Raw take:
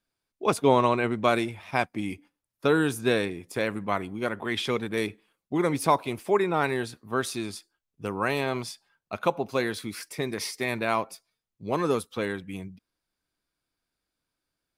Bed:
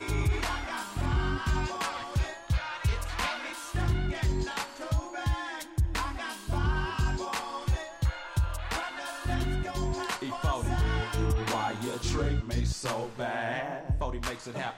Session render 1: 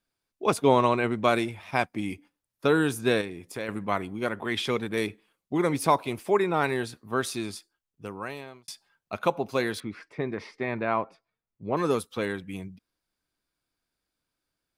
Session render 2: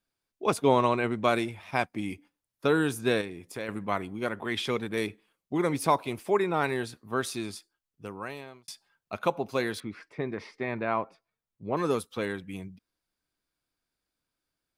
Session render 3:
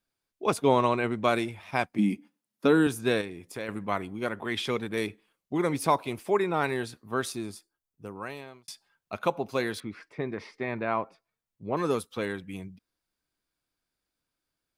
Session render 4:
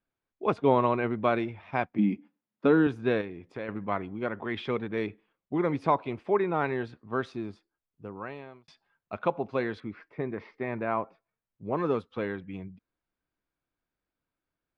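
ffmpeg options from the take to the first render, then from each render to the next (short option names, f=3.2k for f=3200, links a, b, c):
-filter_complex "[0:a]asettb=1/sr,asplit=3[a][b][c];[a]atrim=end=3.214[d];[b]atrim=start=3.21:end=3.69,asetpts=PTS-STARTPTS,afade=t=in:d=0.004:c=qsin,afade=t=out:st=0.476:d=0.004:c=qsin,acompressor=threshold=-39dB:ratio=1.5:attack=3.2:release=140:knee=1:detection=peak[e];[c]atrim=start=3.686[f];[d][e]acrossfade=d=0.004:c1=hsin:c2=qsin[g];[g][f]acrossfade=d=0.004:c1=qsin:c2=hsin,asettb=1/sr,asplit=3[h][i][j];[h]atrim=end=9.804[k];[i]atrim=start=9.8:end=11.77,asetpts=PTS-STARTPTS,afade=t=in:d=0.004:c=qsin,afade=t=out:st=1.966:d=0.004:c=qsin,lowpass=1.9k[l];[j]atrim=start=11.766[m];[k][l]acrossfade=d=0.004:c1=hsin:c2=qsin[n];[n][m]acrossfade=d=0.004:c1=qsin:c2=hsin,asplit=2[o][p];[o]atrim=end=8.68,asetpts=PTS-STARTPTS,afade=t=out:st=7.49:d=1.19[q];[p]atrim=start=8.68,asetpts=PTS-STARTPTS,afade=t=in:d=0.004:c=hsin[r];[q][r]concat=n=2:v=0:a=1"
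-af "volume=-2dB"
-filter_complex "[0:a]asettb=1/sr,asplit=3[a][b][c];[a]atrim=end=1.984[d];[b]atrim=start=1.98:end=2.87,asetpts=PTS-STARTPTS,afade=t=in:d=0.004:c=qsin,afade=t=out:st=0.886:d=0.004:c=qsin,highpass=f=210:t=q:w=4.9[e];[c]atrim=start=2.866[f];[d][e]acrossfade=d=0.004:c1=hsin:c2=qsin[g];[g][f]acrossfade=d=0.004:c1=qsin:c2=hsin,asettb=1/sr,asplit=3[h][i][j];[h]atrim=end=7.324[k];[i]atrim=start=7.32:end=8.16,asetpts=PTS-STARTPTS,afade=t=in:d=0.004:c=qsin,afade=t=out:st=0.836:d=0.004:c=qsin,equalizer=f=3.1k:t=o:w=2.3:g=-7.5[l];[j]atrim=start=8.156[m];[k][l]acrossfade=d=0.004:c1=hsin:c2=qsin[n];[n][m]acrossfade=d=0.004:c1=qsin:c2=hsin"
-af "lowpass=3.4k,aemphasis=mode=reproduction:type=75kf"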